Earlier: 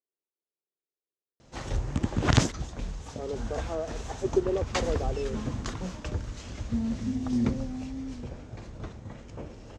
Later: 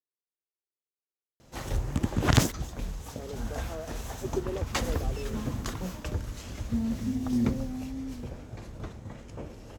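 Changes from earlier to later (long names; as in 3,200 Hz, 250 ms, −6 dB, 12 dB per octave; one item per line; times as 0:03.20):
speech −7.0 dB
background: remove low-pass filter 7,600 Hz 24 dB per octave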